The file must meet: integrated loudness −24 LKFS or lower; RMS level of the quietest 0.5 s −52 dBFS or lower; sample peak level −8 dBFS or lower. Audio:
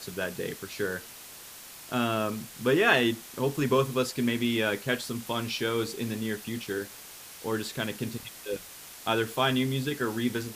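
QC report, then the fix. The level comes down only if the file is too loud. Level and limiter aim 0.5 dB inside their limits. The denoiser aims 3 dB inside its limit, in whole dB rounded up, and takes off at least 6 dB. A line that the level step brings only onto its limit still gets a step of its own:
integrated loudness −29.0 LKFS: in spec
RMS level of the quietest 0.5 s −46 dBFS: out of spec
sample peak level −6.5 dBFS: out of spec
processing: broadband denoise 9 dB, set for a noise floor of −46 dBFS
brickwall limiter −8.5 dBFS

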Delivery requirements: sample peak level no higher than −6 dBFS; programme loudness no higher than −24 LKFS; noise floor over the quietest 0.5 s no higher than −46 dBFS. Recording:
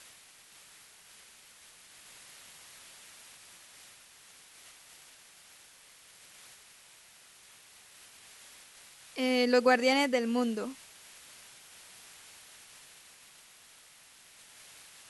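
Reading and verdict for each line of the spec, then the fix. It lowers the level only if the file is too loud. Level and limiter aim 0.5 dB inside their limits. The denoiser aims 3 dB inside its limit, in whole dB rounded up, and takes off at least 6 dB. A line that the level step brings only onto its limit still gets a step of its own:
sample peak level −13.0 dBFS: in spec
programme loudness −28.0 LKFS: in spec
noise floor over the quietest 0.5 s −57 dBFS: in spec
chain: no processing needed

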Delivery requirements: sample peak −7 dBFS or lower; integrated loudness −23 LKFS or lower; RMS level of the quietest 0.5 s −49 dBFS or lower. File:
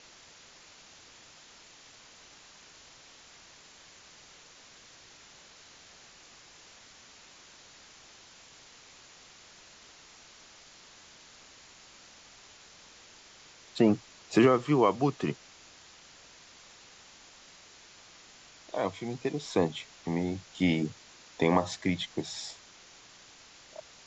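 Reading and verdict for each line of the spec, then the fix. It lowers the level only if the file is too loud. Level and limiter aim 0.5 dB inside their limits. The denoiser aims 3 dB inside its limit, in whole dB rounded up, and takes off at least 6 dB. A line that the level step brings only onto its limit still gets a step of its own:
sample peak −10.5 dBFS: in spec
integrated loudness −29.5 LKFS: in spec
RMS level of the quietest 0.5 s −55 dBFS: in spec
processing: no processing needed

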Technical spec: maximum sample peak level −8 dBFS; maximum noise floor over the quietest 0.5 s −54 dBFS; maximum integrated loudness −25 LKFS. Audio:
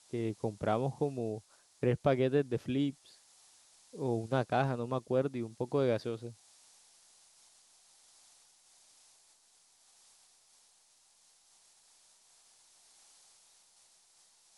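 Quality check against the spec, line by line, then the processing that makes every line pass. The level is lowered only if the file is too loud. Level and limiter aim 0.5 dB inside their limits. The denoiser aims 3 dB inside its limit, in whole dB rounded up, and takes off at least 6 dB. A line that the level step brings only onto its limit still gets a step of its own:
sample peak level −14.5 dBFS: in spec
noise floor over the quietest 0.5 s −67 dBFS: in spec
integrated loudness −33.5 LKFS: in spec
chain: no processing needed

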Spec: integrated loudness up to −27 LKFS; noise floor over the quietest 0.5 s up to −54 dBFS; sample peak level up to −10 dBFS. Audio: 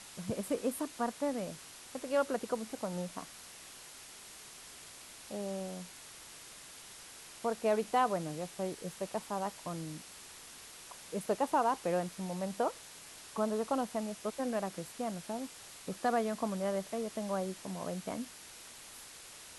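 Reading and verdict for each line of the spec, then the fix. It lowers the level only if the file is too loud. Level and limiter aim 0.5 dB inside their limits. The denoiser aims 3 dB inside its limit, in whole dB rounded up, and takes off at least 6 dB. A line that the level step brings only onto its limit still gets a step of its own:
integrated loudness −36.5 LKFS: in spec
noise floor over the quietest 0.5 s −52 dBFS: out of spec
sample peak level −18.0 dBFS: in spec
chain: broadband denoise 6 dB, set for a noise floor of −52 dBFS

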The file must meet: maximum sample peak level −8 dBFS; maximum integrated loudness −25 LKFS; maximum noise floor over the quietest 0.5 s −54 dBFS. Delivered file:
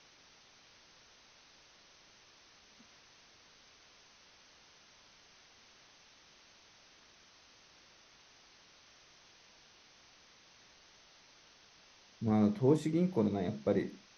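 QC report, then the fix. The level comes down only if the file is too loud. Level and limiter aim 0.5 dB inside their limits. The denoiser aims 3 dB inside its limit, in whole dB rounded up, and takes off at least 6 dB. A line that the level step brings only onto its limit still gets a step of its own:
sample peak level −15.0 dBFS: in spec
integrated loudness −32.0 LKFS: in spec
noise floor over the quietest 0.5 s −62 dBFS: in spec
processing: no processing needed

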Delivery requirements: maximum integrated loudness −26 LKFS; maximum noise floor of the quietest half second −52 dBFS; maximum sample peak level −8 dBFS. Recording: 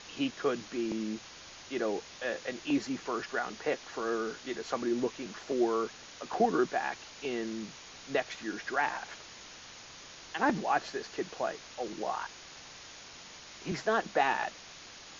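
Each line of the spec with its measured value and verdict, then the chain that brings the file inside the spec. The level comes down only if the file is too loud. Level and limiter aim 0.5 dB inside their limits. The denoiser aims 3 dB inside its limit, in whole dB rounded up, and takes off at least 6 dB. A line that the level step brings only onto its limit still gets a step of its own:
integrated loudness −33.5 LKFS: in spec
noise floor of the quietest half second −50 dBFS: out of spec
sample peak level −14.0 dBFS: in spec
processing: broadband denoise 6 dB, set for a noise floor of −50 dBFS

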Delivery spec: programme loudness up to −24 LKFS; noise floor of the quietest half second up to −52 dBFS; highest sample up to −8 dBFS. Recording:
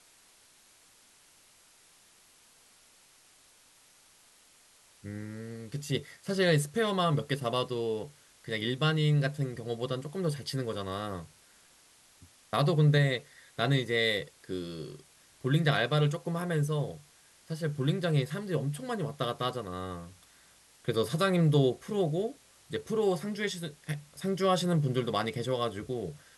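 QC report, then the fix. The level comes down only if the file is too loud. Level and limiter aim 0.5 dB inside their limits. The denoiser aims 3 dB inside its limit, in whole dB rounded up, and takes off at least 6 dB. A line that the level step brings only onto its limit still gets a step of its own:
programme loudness −30.5 LKFS: in spec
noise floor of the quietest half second −61 dBFS: in spec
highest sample −12.5 dBFS: in spec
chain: no processing needed

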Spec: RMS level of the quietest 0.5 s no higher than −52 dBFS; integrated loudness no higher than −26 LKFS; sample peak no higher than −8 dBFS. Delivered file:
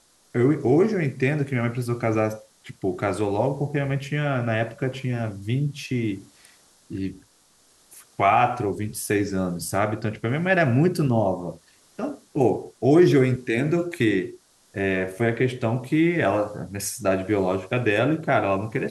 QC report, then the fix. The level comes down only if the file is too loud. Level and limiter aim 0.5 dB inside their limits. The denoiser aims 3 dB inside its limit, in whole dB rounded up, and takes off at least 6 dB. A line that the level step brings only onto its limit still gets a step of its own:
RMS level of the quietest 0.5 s −59 dBFS: in spec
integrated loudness −23.5 LKFS: out of spec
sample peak −6.0 dBFS: out of spec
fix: level −3 dB

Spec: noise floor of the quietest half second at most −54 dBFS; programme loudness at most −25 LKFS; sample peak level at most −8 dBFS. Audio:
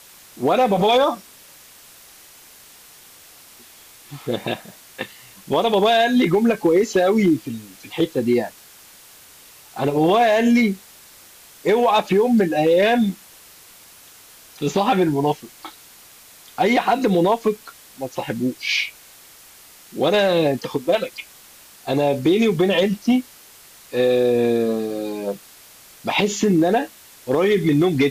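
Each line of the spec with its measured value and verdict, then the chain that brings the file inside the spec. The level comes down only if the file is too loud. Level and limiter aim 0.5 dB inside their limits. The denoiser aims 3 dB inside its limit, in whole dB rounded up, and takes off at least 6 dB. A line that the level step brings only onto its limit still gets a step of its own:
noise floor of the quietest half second −46 dBFS: out of spec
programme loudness −19.0 LKFS: out of spec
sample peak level −8.5 dBFS: in spec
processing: broadband denoise 6 dB, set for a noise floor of −46 dBFS
level −6.5 dB

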